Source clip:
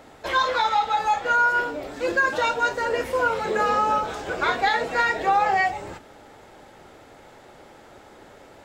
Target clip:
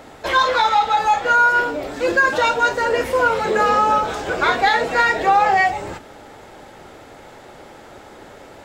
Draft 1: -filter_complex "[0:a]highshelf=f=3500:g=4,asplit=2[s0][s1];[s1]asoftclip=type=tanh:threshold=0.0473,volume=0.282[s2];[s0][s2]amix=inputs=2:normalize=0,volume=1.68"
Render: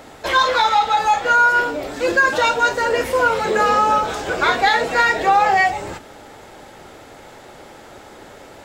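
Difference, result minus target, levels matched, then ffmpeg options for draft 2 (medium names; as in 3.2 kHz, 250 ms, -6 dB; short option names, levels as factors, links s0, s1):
8 kHz band +2.5 dB
-filter_complex "[0:a]asplit=2[s0][s1];[s1]asoftclip=type=tanh:threshold=0.0473,volume=0.282[s2];[s0][s2]amix=inputs=2:normalize=0,volume=1.68"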